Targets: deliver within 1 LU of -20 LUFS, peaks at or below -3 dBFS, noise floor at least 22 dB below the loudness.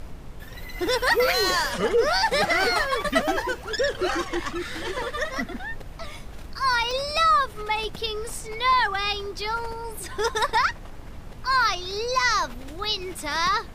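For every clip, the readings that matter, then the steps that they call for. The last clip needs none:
dropouts 3; longest dropout 1.4 ms; noise floor -40 dBFS; noise floor target -46 dBFS; loudness -24.0 LUFS; peak -8.5 dBFS; loudness target -20.0 LUFS
-> interpolate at 2.79/6.91/12.84, 1.4 ms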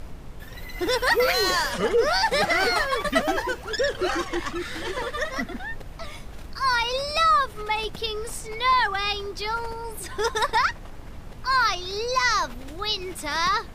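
dropouts 0; noise floor -40 dBFS; noise floor target -46 dBFS
-> noise print and reduce 6 dB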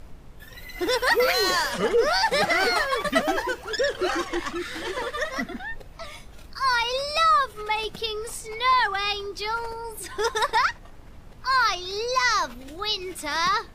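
noise floor -45 dBFS; noise floor target -46 dBFS
-> noise print and reduce 6 dB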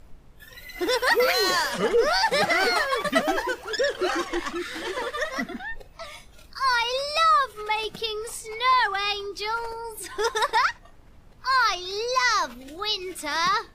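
noise floor -50 dBFS; loudness -24.0 LUFS; peak -8.5 dBFS; loudness target -20.0 LUFS
-> gain +4 dB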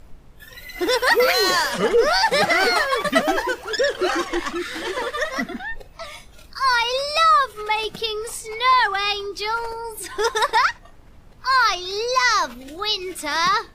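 loudness -20.0 LUFS; peak -5.0 dBFS; noise floor -46 dBFS

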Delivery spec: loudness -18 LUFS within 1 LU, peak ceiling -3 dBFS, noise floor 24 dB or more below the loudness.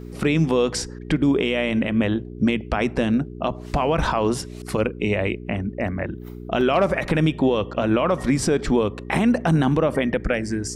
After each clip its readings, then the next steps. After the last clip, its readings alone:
dropouts 2; longest dropout 1.4 ms; hum 60 Hz; harmonics up to 420 Hz; hum level -33 dBFS; loudness -22.0 LUFS; peak -9.0 dBFS; loudness target -18.0 LUFS
-> interpolate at 5.88/6.61, 1.4 ms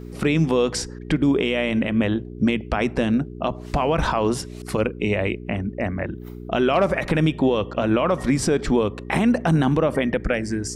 dropouts 0; hum 60 Hz; harmonics up to 420 Hz; hum level -33 dBFS
-> de-hum 60 Hz, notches 7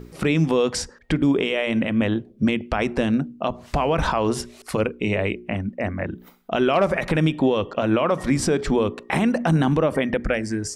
hum none; loudness -22.5 LUFS; peak -9.0 dBFS; loudness target -18.0 LUFS
-> gain +4.5 dB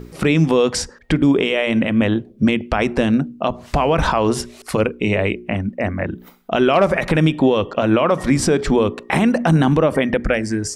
loudness -18.0 LUFS; peak -4.5 dBFS; noise floor -45 dBFS

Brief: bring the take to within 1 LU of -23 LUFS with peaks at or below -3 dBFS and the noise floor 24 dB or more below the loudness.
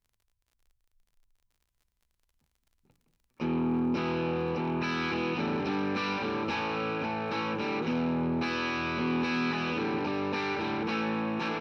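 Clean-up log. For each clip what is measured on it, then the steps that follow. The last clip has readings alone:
ticks 32/s; loudness -30.5 LUFS; peak -19.5 dBFS; loudness target -23.0 LUFS
-> de-click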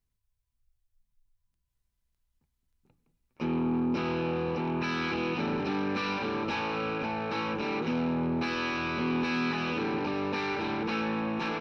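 ticks 0.086/s; loudness -30.5 LUFS; peak -19.5 dBFS; loudness target -23.0 LUFS
-> gain +7.5 dB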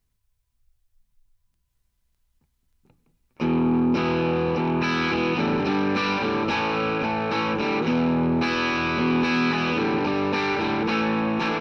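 loudness -23.0 LUFS; peak -12.0 dBFS; noise floor -73 dBFS

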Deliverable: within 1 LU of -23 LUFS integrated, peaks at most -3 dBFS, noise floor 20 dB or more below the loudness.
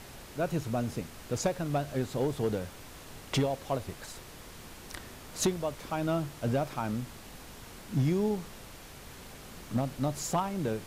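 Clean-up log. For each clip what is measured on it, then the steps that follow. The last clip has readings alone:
clipped 0.3%; flat tops at -20.5 dBFS; noise floor -48 dBFS; noise floor target -53 dBFS; loudness -32.5 LUFS; peak -20.5 dBFS; loudness target -23.0 LUFS
-> clip repair -20.5 dBFS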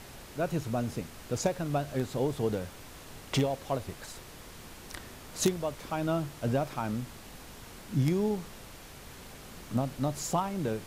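clipped 0.0%; noise floor -48 dBFS; noise floor target -53 dBFS
-> noise print and reduce 6 dB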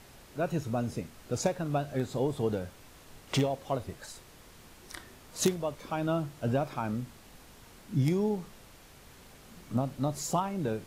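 noise floor -54 dBFS; loudness -32.5 LUFS; peak -11.5 dBFS; loudness target -23.0 LUFS
-> gain +9.5 dB; limiter -3 dBFS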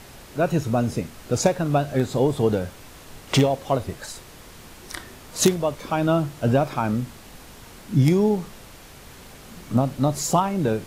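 loudness -23.0 LUFS; peak -3.0 dBFS; noise floor -45 dBFS

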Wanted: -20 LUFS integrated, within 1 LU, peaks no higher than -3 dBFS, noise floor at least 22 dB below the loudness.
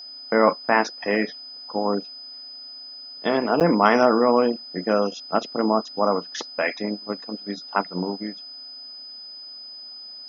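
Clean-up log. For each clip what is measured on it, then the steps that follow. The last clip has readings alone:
dropouts 1; longest dropout 8.6 ms; steady tone 5000 Hz; tone level -37 dBFS; loudness -23.0 LUFS; peak -2.0 dBFS; loudness target -20.0 LUFS
-> interpolate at 3.6, 8.6 ms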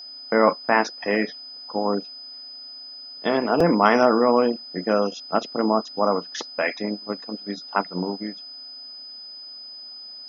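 dropouts 0; steady tone 5000 Hz; tone level -37 dBFS
-> notch 5000 Hz, Q 30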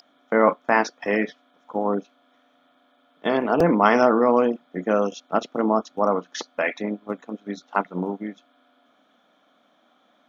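steady tone none; loudness -23.0 LUFS; peak -2.0 dBFS; loudness target -20.0 LUFS
-> gain +3 dB; limiter -3 dBFS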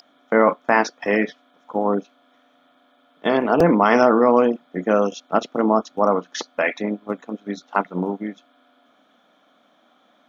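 loudness -20.5 LUFS; peak -3.0 dBFS; noise floor -60 dBFS

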